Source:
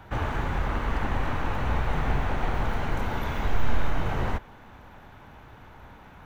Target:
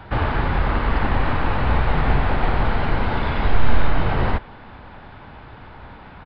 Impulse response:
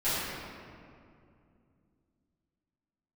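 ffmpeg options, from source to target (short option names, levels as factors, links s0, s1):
-af "aresample=11025,aresample=44100,volume=2.37"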